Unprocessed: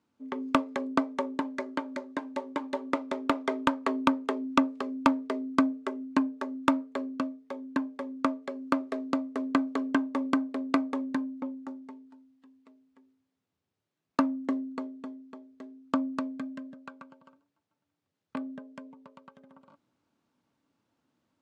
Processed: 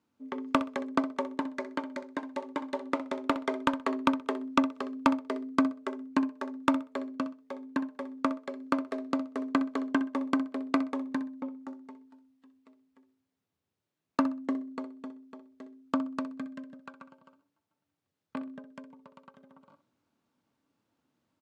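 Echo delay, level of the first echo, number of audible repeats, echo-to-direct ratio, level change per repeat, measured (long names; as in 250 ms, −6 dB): 63 ms, −13.5 dB, 2, −13.5 dB, −13.0 dB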